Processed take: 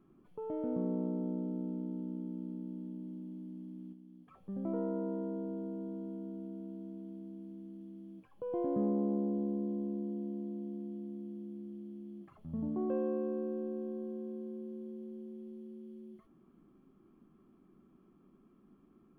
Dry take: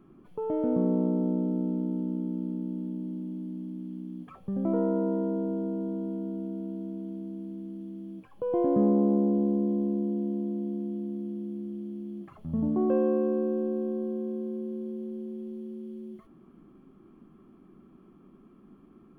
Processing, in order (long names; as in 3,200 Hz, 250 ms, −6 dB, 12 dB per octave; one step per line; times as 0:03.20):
0:03.92–0:04.49: downward compressor 6 to 1, threshold −43 dBFS, peak gain reduction 8 dB
level −9 dB